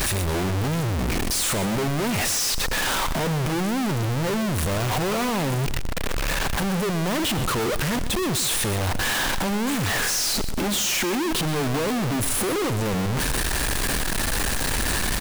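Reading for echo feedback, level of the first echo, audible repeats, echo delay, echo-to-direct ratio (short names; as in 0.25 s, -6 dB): 27%, -13.0 dB, 2, 0.125 s, -12.5 dB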